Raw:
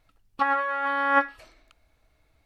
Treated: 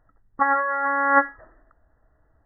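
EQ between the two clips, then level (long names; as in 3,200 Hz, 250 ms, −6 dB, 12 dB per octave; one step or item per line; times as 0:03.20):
linear-phase brick-wall low-pass 2,000 Hz
+3.5 dB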